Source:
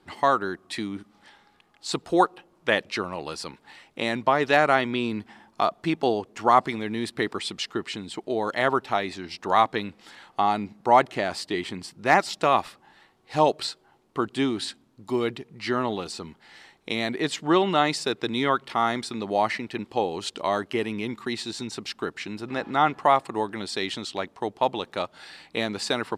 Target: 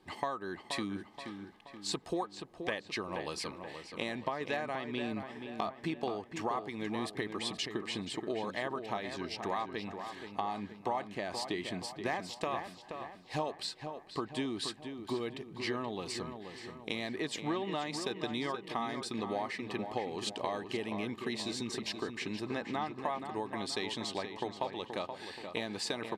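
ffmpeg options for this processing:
-filter_complex "[0:a]acompressor=threshold=0.0355:ratio=6,asuperstop=centerf=1400:order=8:qfactor=8,asplit=2[s0][s1];[s1]adelay=477,lowpass=f=3100:p=1,volume=0.422,asplit=2[s2][s3];[s3]adelay=477,lowpass=f=3100:p=1,volume=0.5,asplit=2[s4][s5];[s5]adelay=477,lowpass=f=3100:p=1,volume=0.5,asplit=2[s6][s7];[s7]adelay=477,lowpass=f=3100:p=1,volume=0.5,asplit=2[s8][s9];[s9]adelay=477,lowpass=f=3100:p=1,volume=0.5,asplit=2[s10][s11];[s11]adelay=477,lowpass=f=3100:p=1,volume=0.5[s12];[s2][s4][s6][s8][s10][s12]amix=inputs=6:normalize=0[s13];[s0][s13]amix=inputs=2:normalize=0,volume=0.668"

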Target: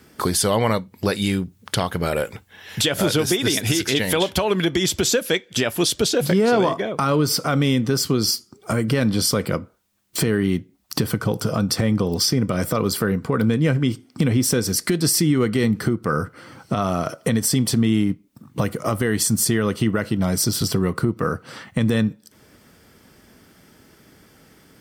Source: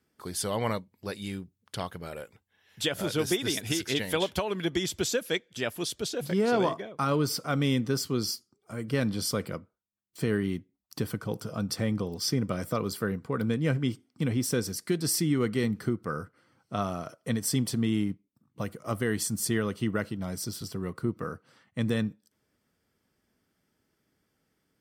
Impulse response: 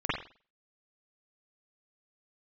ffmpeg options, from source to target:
-filter_complex "[0:a]acompressor=threshold=0.00631:ratio=3,asplit=2[s0][s1];[1:a]atrim=start_sample=2205,asetrate=83790,aresample=44100[s2];[s1][s2]afir=irnorm=-1:irlink=0,volume=0.0501[s3];[s0][s3]amix=inputs=2:normalize=0,alimiter=level_in=37.6:limit=0.891:release=50:level=0:latency=1,volume=0.398"

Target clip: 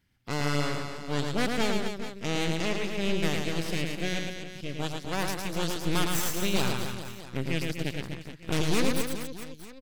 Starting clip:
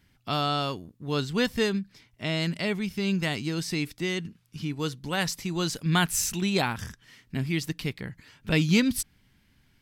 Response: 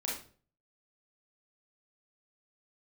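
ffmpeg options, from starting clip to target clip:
-af "aeval=exprs='0.376*(cos(1*acos(clip(val(0)/0.376,-1,1)))-cos(1*PI/2))+0.119*(cos(8*acos(clip(val(0)/0.376,-1,1)))-cos(8*PI/2))':c=same,aecho=1:1:110|247.5|419.4|634.2|902.8:0.631|0.398|0.251|0.158|0.1,volume=0.376"

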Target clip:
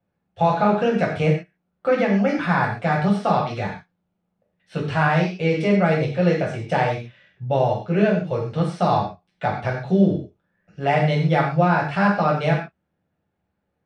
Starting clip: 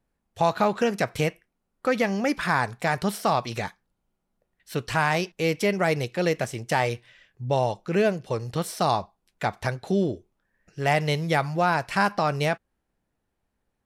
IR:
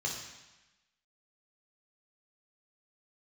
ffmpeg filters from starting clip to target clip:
-filter_complex "[0:a]lowpass=3000,bandreject=f=990:w=17[s0];[1:a]atrim=start_sample=2205,afade=t=out:st=0.24:d=0.01,atrim=end_sample=11025,asetrate=57330,aresample=44100[s1];[s0][s1]afir=irnorm=-1:irlink=0,volume=1.26"

